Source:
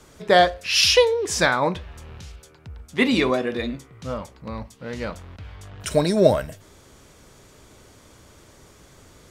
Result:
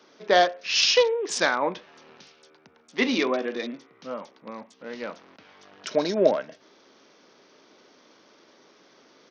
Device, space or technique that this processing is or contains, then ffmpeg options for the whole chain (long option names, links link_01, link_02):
Bluetooth headset: -af "highpass=frequency=230:width=0.5412,highpass=frequency=230:width=1.3066,aresample=16000,aresample=44100,volume=-3.5dB" -ar 48000 -c:a sbc -b:a 64k